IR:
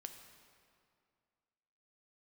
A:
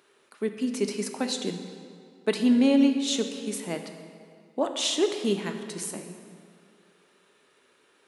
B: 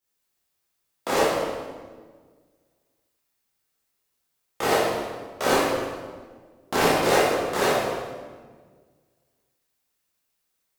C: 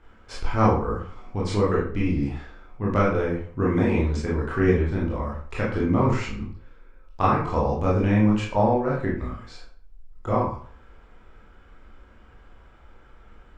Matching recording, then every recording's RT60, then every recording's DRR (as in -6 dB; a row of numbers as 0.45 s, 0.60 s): A; 2.3 s, 1.5 s, 0.50 s; 5.5 dB, -10.5 dB, -6.0 dB